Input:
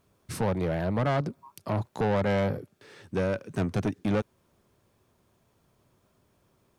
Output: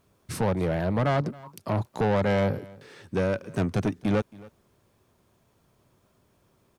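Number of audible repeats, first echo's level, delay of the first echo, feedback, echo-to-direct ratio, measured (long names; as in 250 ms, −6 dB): 1, −22.0 dB, 273 ms, repeats not evenly spaced, −22.0 dB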